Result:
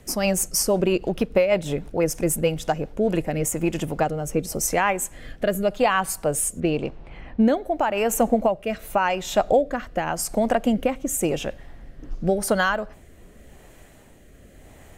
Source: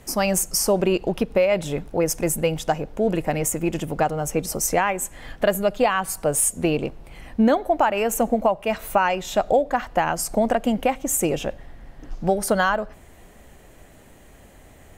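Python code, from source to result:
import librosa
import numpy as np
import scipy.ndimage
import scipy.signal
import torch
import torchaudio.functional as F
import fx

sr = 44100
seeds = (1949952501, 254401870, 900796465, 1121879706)

y = fx.env_lowpass(x, sr, base_hz=2300.0, full_db=-14.5, at=(6.6, 7.56))
y = fx.rotary_switch(y, sr, hz=6.3, then_hz=0.9, switch_at_s=2.53)
y = F.gain(torch.from_numpy(y), 1.5).numpy()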